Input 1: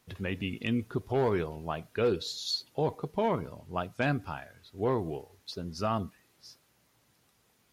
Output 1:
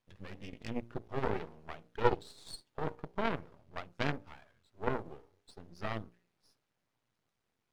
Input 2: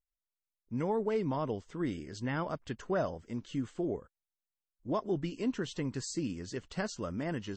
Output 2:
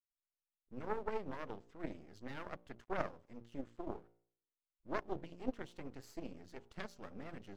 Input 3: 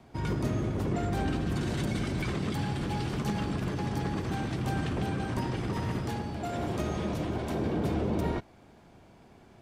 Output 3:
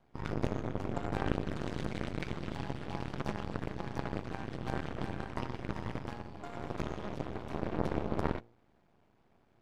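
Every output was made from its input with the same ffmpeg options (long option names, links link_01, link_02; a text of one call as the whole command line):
ffmpeg -i in.wav -af "aemphasis=mode=reproduction:type=50fm,acontrast=21,bandreject=frequency=58.37:width_type=h:width=4,bandreject=frequency=116.74:width_type=h:width=4,bandreject=frequency=175.11:width_type=h:width=4,bandreject=frequency=233.48:width_type=h:width=4,bandreject=frequency=291.85:width_type=h:width=4,bandreject=frequency=350.22:width_type=h:width=4,bandreject=frequency=408.59:width_type=h:width=4,bandreject=frequency=466.96:width_type=h:width=4,bandreject=frequency=525.33:width_type=h:width=4,bandreject=frequency=583.7:width_type=h:width=4,aeval=exprs='max(val(0),0)':channel_layout=same,aeval=exprs='0.237*(cos(1*acos(clip(val(0)/0.237,-1,1)))-cos(1*PI/2))+0.0668*(cos(3*acos(clip(val(0)/0.237,-1,1)))-cos(3*PI/2))':channel_layout=same,volume=2dB" out.wav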